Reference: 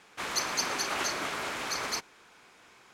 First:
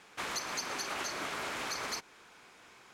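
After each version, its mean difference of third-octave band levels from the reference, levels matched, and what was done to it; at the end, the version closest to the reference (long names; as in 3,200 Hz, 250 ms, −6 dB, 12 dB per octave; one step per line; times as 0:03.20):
2.5 dB: downward compressor, threshold −34 dBFS, peak gain reduction 9.5 dB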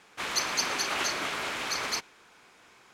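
1.5 dB: dynamic equaliser 3,000 Hz, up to +4 dB, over −44 dBFS, Q 0.96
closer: second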